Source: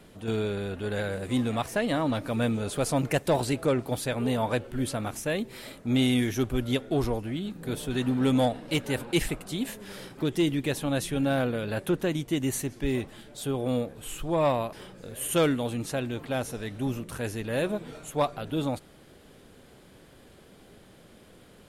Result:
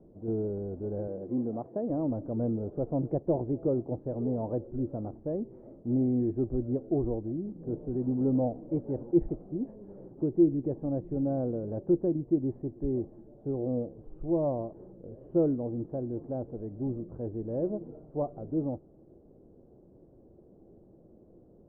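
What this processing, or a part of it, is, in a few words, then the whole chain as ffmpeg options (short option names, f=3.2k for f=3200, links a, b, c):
under water: -filter_complex "[0:a]lowpass=f=660:w=0.5412,lowpass=f=660:w=1.3066,equalizer=f=340:t=o:w=0.21:g=8,asettb=1/sr,asplit=3[a][b][c];[a]atrim=end=1.074[d];[b]atrim=start=1.07:end=1.9,asetpts=PTS-STARTPTS,afade=t=in:d=0.004:c=qsin,afade=t=out:st=0.826:d=0.004:c=qsin,highpass=160[e];[c]atrim=start=1.896[f];[d][e]acrossfade=d=0.004:c1=hsin:c2=qsin[g];[g][f]acrossfade=d=0.004:c1=qsin:c2=hsin,volume=-3.5dB"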